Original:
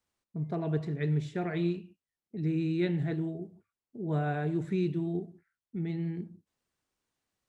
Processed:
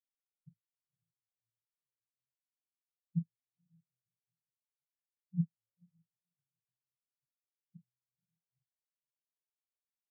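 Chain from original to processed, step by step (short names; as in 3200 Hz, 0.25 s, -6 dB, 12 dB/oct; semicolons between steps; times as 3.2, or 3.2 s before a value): FFT order left unsorted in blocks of 16 samples; dynamic EQ 760 Hz, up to +7 dB, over -53 dBFS, Q 2.4; in parallel at +2 dB: limiter -26.5 dBFS, peak gain reduction 9.5 dB; on the sum: fixed phaser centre 1100 Hz, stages 4; flipped gate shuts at -28 dBFS, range -28 dB; speed mistake 45 rpm record played at 33 rpm; diffused feedback echo 0.528 s, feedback 44%, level -6 dB; on a send at -8 dB: reverb RT60 0.20 s, pre-delay 5 ms; on the sum: spectral expander 4:1; gain +4.5 dB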